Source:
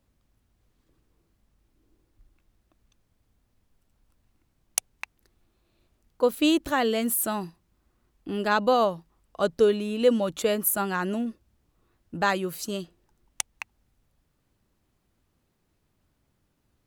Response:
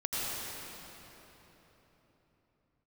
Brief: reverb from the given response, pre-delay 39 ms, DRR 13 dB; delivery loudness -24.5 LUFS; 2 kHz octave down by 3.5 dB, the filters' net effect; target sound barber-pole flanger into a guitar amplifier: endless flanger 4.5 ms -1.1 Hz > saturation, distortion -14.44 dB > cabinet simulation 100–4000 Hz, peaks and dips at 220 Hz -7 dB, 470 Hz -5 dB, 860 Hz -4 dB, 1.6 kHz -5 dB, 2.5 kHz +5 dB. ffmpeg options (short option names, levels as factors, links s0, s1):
-filter_complex "[0:a]equalizer=f=2000:t=o:g=-3,asplit=2[s0][s1];[1:a]atrim=start_sample=2205,adelay=39[s2];[s1][s2]afir=irnorm=-1:irlink=0,volume=0.1[s3];[s0][s3]amix=inputs=2:normalize=0,asplit=2[s4][s5];[s5]adelay=4.5,afreqshift=-1.1[s6];[s4][s6]amix=inputs=2:normalize=1,asoftclip=threshold=0.0944,highpass=100,equalizer=f=220:t=q:w=4:g=-7,equalizer=f=470:t=q:w=4:g=-5,equalizer=f=860:t=q:w=4:g=-4,equalizer=f=1600:t=q:w=4:g=-5,equalizer=f=2500:t=q:w=4:g=5,lowpass=f=4000:w=0.5412,lowpass=f=4000:w=1.3066,volume=3.76"